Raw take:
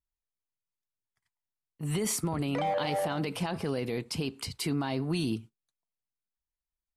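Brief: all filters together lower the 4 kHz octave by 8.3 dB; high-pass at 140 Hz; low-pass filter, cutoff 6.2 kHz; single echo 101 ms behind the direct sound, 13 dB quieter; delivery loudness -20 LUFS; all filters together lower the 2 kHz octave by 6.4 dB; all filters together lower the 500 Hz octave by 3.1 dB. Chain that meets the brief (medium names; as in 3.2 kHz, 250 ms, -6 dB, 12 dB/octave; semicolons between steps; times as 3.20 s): high-pass 140 Hz; low-pass 6.2 kHz; peaking EQ 500 Hz -3.5 dB; peaking EQ 2 kHz -5.5 dB; peaking EQ 4 kHz -8.5 dB; delay 101 ms -13 dB; trim +14.5 dB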